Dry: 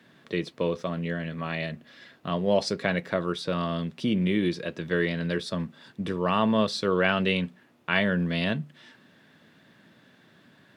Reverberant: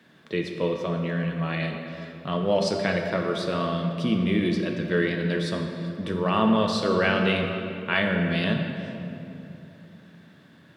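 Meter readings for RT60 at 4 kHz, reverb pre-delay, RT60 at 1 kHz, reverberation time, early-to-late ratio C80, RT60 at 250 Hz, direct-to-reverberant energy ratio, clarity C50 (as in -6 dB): 1.7 s, 6 ms, 2.7 s, 3.0 s, 5.0 dB, 3.7 s, 2.5 dB, 4.0 dB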